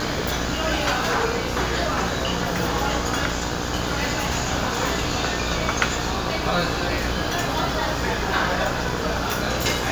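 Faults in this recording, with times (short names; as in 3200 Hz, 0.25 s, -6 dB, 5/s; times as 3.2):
buzz 60 Hz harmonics 29 -29 dBFS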